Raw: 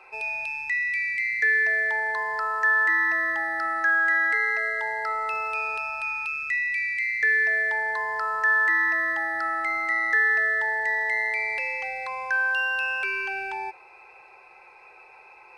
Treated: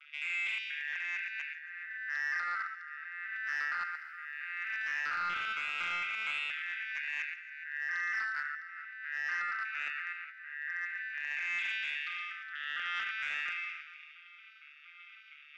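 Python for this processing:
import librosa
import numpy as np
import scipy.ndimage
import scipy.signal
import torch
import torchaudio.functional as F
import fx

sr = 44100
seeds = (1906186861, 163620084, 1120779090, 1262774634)

y = fx.vocoder_arp(x, sr, chord='minor triad', root=50, every_ms=232)
y = fx.brickwall_highpass(y, sr, low_hz=1200.0)
y = fx.tilt_eq(y, sr, slope=3.5)
y = fx.over_compress(y, sr, threshold_db=-29.0, ratio=-0.5)
y = fx.echo_multitap(y, sr, ms=(42, 48, 76, 118, 416), db=(-9.0, -16.5, -10.0, -6.0, -14.0))
y = np.clip(10.0 ** (21.0 / 20.0) * y, -1.0, 1.0) / 10.0 ** (21.0 / 20.0)
y = scipy.signal.sosfilt(scipy.signal.butter(2, 3900.0, 'lowpass', fs=sr, output='sos'), y)
y = fx.echo_wet_highpass(y, sr, ms=138, feedback_pct=56, hz=2500.0, wet_db=-17)
y = fx.echo_crushed(y, sr, ms=125, feedback_pct=35, bits=10, wet_db=-13.0, at=(3.59, 6.05))
y = y * 10.0 ** (-8.5 / 20.0)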